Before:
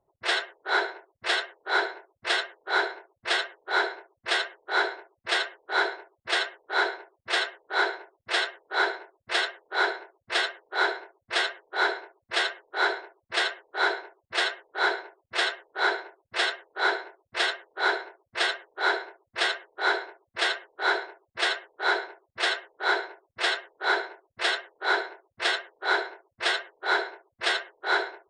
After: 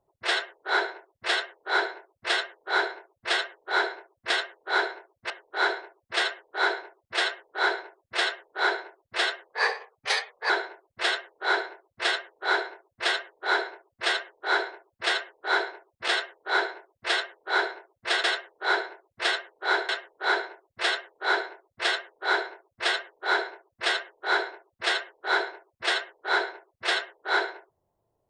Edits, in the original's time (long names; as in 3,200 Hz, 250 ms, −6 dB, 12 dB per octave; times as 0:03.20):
0:04.30–0:06.46: swap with 0:17.40–0:18.40
0:10.65–0:11.82: play speed 116%
0:20.05–0:20.47: remove